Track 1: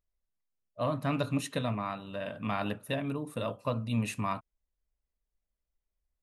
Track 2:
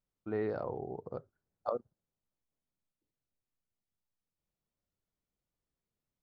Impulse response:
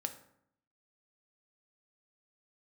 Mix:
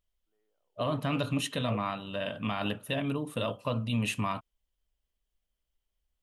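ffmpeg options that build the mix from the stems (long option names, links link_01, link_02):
-filter_complex "[0:a]volume=2.5dB,asplit=2[link_01][link_02];[1:a]highpass=350,volume=-3dB[link_03];[link_02]apad=whole_len=274365[link_04];[link_03][link_04]sidechaingate=range=-41dB:threshold=-46dB:ratio=16:detection=peak[link_05];[link_01][link_05]amix=inputs=2:normalize=0,equalizer=frequency=3100:width=4.7:gain=11.5,alimiter=limit=-20dB:level=0:latency=1:release=40"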